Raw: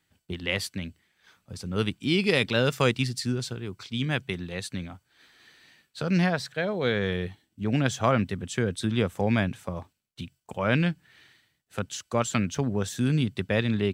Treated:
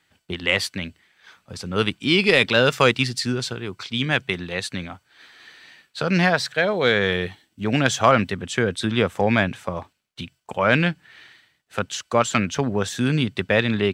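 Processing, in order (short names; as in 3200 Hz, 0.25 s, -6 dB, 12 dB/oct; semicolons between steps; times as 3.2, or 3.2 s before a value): overdrive pedal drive 8 dB, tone 3800 Hz, clips at -7.5 dBFS, from 6.24 s tone 6800 Hz, from 8.3 s tone 3300 Hz; gain +6.5 dB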